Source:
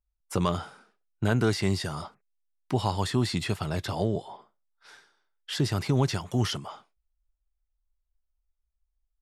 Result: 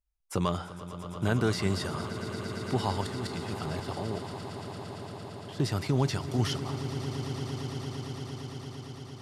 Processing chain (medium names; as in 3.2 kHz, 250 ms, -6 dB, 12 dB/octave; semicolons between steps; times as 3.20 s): 3.01–5.60 s: level held to a coarse grid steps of 16 dB; echo with a slow build-up 114 ms, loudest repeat 8, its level -15 dB; trim -2.5 dB